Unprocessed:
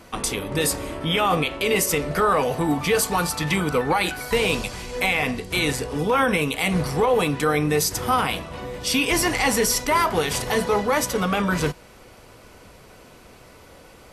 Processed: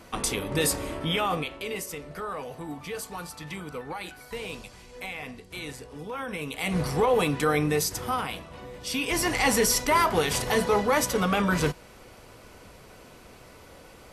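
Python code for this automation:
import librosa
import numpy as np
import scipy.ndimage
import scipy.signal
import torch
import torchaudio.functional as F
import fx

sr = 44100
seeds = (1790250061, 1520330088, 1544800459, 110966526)

y = fx.gain(x, sr, db=fx.line((0.97, -2.5), (1.92, -15.0), (6.24, -15.0), (6.84, -3.0), (7.61, -3.0), (8.27, -9.0), (8.88, -9.0), (9.47, -2.0)))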